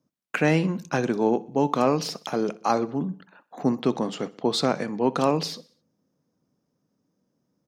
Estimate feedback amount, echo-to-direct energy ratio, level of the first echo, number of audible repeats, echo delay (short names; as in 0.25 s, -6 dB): 51%, -19.5 dB, -21.0 dB, 3, 63 ms